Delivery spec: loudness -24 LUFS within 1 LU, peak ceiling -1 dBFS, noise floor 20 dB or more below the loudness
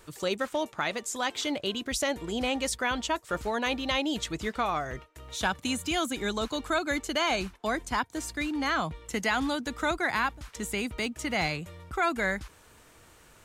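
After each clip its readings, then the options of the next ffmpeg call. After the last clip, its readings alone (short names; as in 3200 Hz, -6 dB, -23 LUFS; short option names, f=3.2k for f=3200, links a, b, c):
loudness -30.0 LUFS; peak -15.5 dBFS; loudness target -24.0 LUFS
-> -af "volume=6dB"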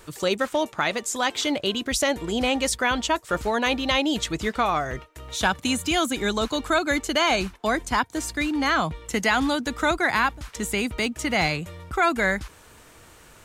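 loudness -24.0 LUFS; peak -9.5 dBFS; noise floor -51 dBFS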